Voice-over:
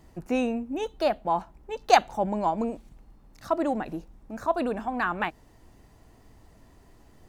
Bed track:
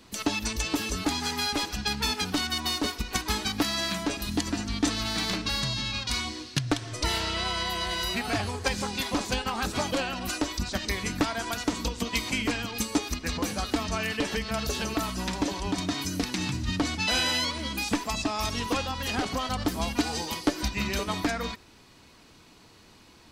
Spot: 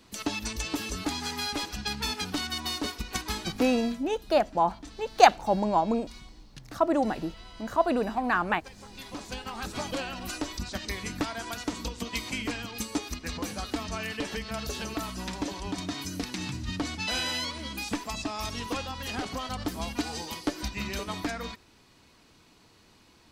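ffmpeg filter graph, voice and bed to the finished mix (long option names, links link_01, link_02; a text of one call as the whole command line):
ffmpeg -i stem1.wav -i stem2.wav -filter_complex "[0:a]adelay=3300,volume=1.5dB[link_01];[1:a]volume=12.5dB,afade=type=out:start_time=3.23:duration=0.81:silence=0.141254,afade=type=in:start_time=8.72:duration=1.21:silence=0.158489[link_02];[link_01][link_02]amix=inputs=2:normalize=0" out.wav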